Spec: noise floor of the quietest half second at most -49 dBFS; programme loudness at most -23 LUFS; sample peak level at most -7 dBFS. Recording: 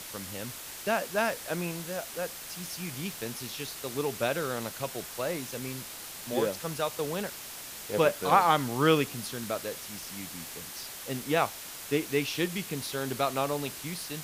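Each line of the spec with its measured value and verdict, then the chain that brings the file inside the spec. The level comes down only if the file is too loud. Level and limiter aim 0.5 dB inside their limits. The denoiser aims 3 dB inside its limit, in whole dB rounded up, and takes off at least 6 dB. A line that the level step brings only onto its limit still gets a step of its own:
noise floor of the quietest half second -42 dBFS: fail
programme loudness -31.5 LUFS: pass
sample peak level -9.0 dBFS: pass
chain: noise reduction 10 dB, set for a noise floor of -42 dBFS

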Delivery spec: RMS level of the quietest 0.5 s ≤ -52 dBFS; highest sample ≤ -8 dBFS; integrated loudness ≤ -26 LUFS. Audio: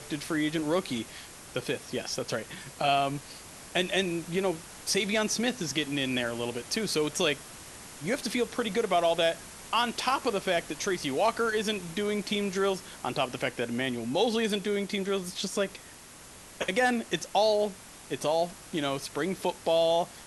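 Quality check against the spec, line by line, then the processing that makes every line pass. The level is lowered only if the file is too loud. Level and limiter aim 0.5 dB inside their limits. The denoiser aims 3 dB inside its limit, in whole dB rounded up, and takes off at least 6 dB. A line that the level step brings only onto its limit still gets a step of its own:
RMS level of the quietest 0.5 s -49 dBFS: fail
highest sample -12.0 dBFS: pass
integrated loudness -29.5 LUFS: pass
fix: noise reduction 6 dB, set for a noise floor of -49 dBFS

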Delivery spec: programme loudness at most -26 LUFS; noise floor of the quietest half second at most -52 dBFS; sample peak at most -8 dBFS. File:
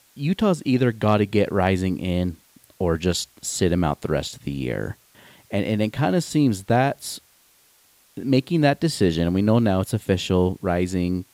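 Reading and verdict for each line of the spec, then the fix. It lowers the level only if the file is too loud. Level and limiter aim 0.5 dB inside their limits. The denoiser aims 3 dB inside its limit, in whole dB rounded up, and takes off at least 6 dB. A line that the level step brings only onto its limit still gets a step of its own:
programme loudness -22.5 LUFS: fail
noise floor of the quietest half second -58 dBFS: pass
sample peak -6.0 dBFS: fail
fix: trim -4 dB

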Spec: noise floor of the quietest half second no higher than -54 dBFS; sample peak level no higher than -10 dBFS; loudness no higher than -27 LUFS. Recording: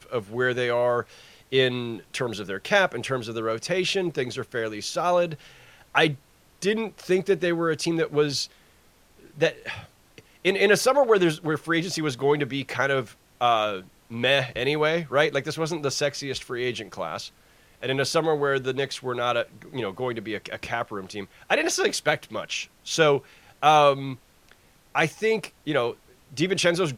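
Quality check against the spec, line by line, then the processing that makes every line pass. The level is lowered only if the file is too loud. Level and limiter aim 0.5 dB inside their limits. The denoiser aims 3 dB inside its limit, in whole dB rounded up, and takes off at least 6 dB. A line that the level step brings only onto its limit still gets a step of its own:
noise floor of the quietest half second -58 dBFS: pass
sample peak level -5.0 dBFS: fail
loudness -25.0 LUFS: fail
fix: trim -2.5 dB; peak limiter -10.5 dBFS

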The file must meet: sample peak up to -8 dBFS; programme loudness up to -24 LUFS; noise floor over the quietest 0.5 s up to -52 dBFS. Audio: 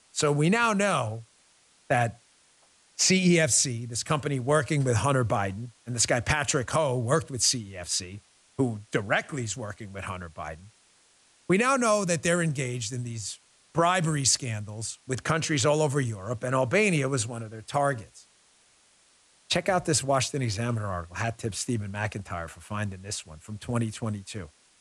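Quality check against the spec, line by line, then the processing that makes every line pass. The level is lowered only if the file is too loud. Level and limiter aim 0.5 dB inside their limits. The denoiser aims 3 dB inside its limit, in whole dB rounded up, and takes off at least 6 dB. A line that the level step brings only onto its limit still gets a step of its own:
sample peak -10.5 dBFS: pass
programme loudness -26.5 LUFS: pass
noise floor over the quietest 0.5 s -62 dBFS: pass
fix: none needed

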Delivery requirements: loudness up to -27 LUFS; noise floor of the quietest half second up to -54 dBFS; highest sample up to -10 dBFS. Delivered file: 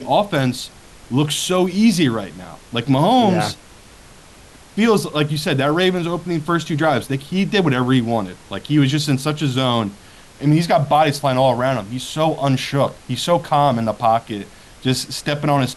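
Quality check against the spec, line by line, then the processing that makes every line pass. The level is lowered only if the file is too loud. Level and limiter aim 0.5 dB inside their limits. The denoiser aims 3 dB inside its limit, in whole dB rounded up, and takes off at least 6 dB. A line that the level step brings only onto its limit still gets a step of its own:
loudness -18.5 LUFS: fail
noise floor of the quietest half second -44 dBFS: fail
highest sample -5.0 dBFS: fail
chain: noise reduction 6 dB, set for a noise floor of -44 dBFS; trim -9 dB

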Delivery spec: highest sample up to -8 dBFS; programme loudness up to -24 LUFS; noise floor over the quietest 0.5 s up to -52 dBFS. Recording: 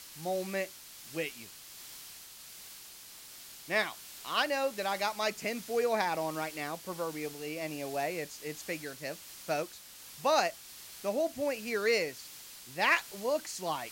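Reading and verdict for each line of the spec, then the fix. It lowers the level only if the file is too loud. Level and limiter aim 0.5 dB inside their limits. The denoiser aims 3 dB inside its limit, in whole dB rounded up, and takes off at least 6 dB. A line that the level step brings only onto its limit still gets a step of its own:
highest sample -14.5 dBFS: pass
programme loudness -33.5 LUFS: pass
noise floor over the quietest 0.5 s -50 dBFS: fail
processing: noise reduction 6 dB, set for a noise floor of -50 dBFS

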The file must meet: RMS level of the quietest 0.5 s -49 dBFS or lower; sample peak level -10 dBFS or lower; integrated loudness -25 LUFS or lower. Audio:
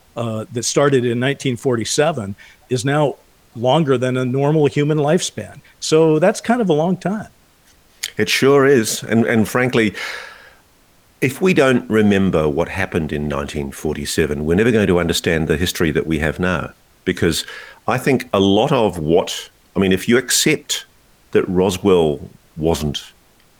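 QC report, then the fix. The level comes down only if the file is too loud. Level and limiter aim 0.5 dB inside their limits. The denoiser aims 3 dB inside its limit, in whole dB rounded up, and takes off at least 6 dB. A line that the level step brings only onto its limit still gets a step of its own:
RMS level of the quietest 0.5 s -53 dBFS: pass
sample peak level -3.0 dBFS: fail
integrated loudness -17.5 LUFS: fail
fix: trim -8 dB

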